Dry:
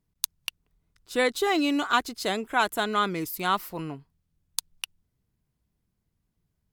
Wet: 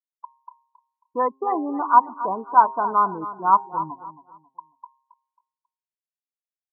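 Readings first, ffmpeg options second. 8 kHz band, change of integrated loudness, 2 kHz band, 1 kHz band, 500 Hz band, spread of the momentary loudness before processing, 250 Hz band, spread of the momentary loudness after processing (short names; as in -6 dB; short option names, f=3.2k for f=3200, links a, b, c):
under -40 dB, +6.0 dB, -8.0 dB, +10.5 dB, -0.5 dB, 15 LU, -2.5 dB, 12 LU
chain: -filter_complex "[0:a]lowpass=f=990:t=q:w=10,afftfilt=real='re*gte(hypot(re,im),0.112)':imag='im*gte(hypot(re,im),0.112)':win_size=1024:overlap=0.75,bandreject=f=133.4:t=h:w=4,bandreject=f=266.8:t=h:w=4,bandreject=f=400.2:t=h:w=4,bandreject=f=533.6:t=h:w=4,bandreject=f=667:t=h:w=4,bandreject=f=800.4:t=h:w=4,bandreject=f=933.8:t=h:w=4,bandreject=f=1.0672k:t=h:w=4,asplit=2[a][b];[b]aecho=0:1:271|542|813:0.2|0.0599|0.018[c];[a][c]amix=inputs=2:normalize=0,volume=-3dB"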